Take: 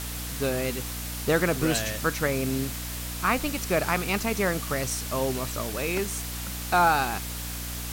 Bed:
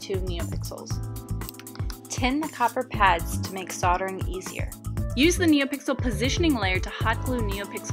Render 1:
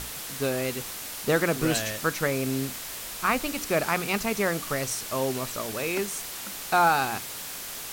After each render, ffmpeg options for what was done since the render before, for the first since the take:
-af "bandreject=f=60:t=h:w=6,bandreject=f=120:t=h:w=6,bandreject=f=180:t=h:w=6,bandreject=f=240:t=h:w=6,bandreject=f=300:t=h:w=6"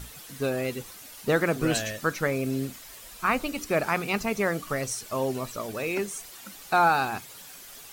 -af "afftdn=nr=11:nf=-37"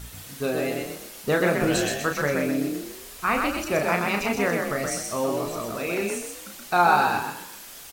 -filter_complex "[0:a]asplit=2[s0][s1];[s1]adelay=34,volume=0.531[s2];[s0][s2]amix=inputs=2:normalize=0,asplit=6[s3][s4][s5][s6][s7][s8];[s4]adelay=126,afreqshift=36,volume=0.668[s9];[s5]adelay=252,afreqshift=72,volume=0.24[s10];[s6]adelay=378,afreqshift=108,volume=0.0871[s11];[s7]adelay=504,afreqshift=144,volume=0.0313[s12];[s8]adelay=630,afreqshift=180,volume=0.0112[s13];[s3][s9][s10][s11][s12][s13]amix=inputs=6:normalize=0"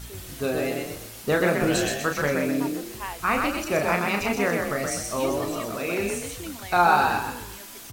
-filter_complex "[1:a]volume=0.168[s0];[0:a][s0]amix=inputs=2:normalize=0"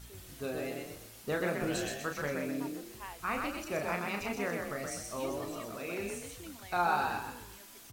-af "volume=0.282"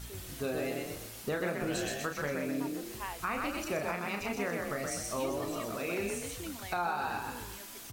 -filter_complex "[0:a]asplit=2[s0][s1];[s1]acompressor=threshold=0.00891:ratio=6,volume=1[s2];[s0][s2]amix=inputs=2:normalize=0,alimiter=limit=0.0708:level=0:latency=1:release=328"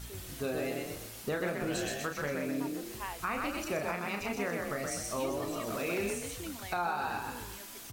-filter_complex "[0:a]asettb=1/sr,asplit=3[s0][s1][s2];[s0]atrim=end=1.474[s3];[s1]atrim=start=1.47:end=2.58,asetpts=PTS-STARTPTS,afade=t=in:d=0.004:c=qsin,afade=t=out:st=1.106:d=0.004:c=qsin,asoftclip=type=hard:threshold=0.0501[s4];[s2]atrim=start=2.576[s5];[s3][s4]acrossfade=d=0.004:c1=hsin:c2=qsin[s6];[s6][s5]acrossfade=d=0.004:c1=qsin:c2=hsin,asettb=1/sr,asplit=3[s7][s8][s9];[s7]atrim=end=5.674[s10];[s8]atrim=start=5.67:end=6.13,asetpts=PTS-STARTPTS,afade=t=in:d=0.004:c=qsin,afade=t=out:st=0.456:d=0.004:c=qsin,aeval=exprs='val(0)+0.5*0.0075*sgn(val(0))':c=same[s11];[s9]atrim=start=6.126[s12];[s10][s11]acrossfade=d=0.004:c1=hsin:c2=qsin[s13];[s13][s12]acrossfade=d=0.004:c1=qsin:c2=hsin"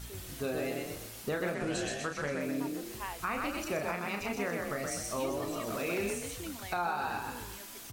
-filter_complex "[0:a]asettb=1/sr,asplit=3[s0][s1][s2];[s0]atrim=end=1.544[s3];[s1]atrim=start=1.54:end=2.41,asetpts=PTS-STARTPTS,afade=t=in:d=0.004:c=qsin,afade=t=out:st=0.866:d=0.004:c=qsin,lowpass=f=10000:w=0.5412,lowpass=f=10000:w=1.3066[s4];[s2]atrim=start=2.406[s5];[s3][s4]acrossfade=d=0.004:c1=hsin:c2=qsin[s6];[s6][s5]acrossfade=d=0.004:c1=qsin:c2=hsin"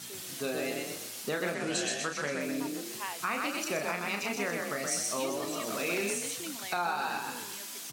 -af "highpass=f=150:w=0.5412,highpass=f=150:w=1.3066,equalizer=f=6000:w=0.37:g=7.5"

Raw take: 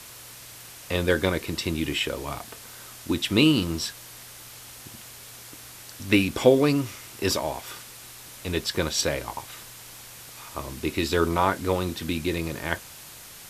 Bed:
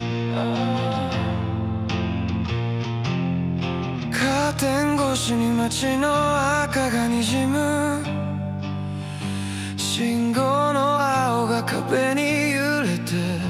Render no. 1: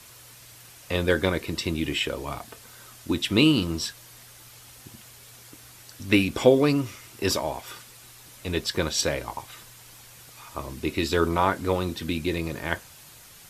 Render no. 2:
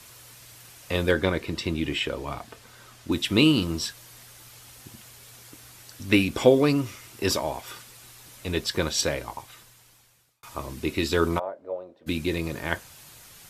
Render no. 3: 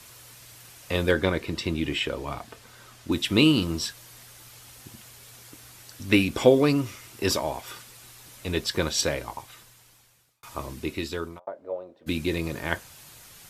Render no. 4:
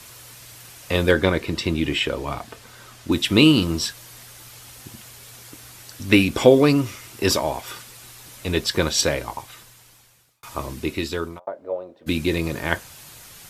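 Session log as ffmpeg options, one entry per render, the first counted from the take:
-af "afftdn=nr=6:nf=-45"
-filter_complex "[0:a]asettb=1/sr,asplit=3[s0][s1][s2];[s0]atrim=end=1.114[s3];[s1]atrim=start=1.11:end=3.12,asetpts=PTS-STARTPTS,afade=t=in:d=0.004:c=qsin,afade=t=out:st=2.006:d=0.004:c=qsin,highshelf=f=7300:g=-10[s4];[s2]atrim=start=3.116[s5];[s3][s4]acrossfade=d=0.004:c1=hsin:c2=qsin[s6];[s6][s5]acrossfade=d=0.004:c1=qsin:c2=hsin,asplit=3[s7][s8][s9];[s7]afade=t=out:st=11.38:d=0.02[s10];[s8]bandpass=f=590:t=q:w=6.6,afade=t=in:st=11.38:d=0.02,afade=t=out:st=12.06:d=0.02[s11];[s9]afade=t=in:st=12.06:d=0.02[s12];[s10][s11][s12]amix=inputs=3:normalize=0,asplit=2[s13][s14];[s13]atrim=end=10.43,asetpts=PTS-STARTPTS,afade=t=out:st=9.01:d=1.42[s15];[s14]atrim=start=10.43,asetpts=PTS-STARTPTS,afade=t=in:d=0.004:c=hsin[s16];[s15][s16]concat=n=2:v=0:a=1"
-filter_complex "[0:a]asplit=2[s0][s1];[s0]atrim=end=11.47,asetpts=PTS-STARTPTS,afade=t=out:st=10.63:d=0.84[s2];[s1]atrim=start=11.47,asetpts=PTS-STARTPTS,afade=t=in:d=0.004:c=hsin[s3];[s2][s3]concat=n=2:v=0:a=1"
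-af "volume=1.78,alimiter=limit=0.891:level=0:latency=1"

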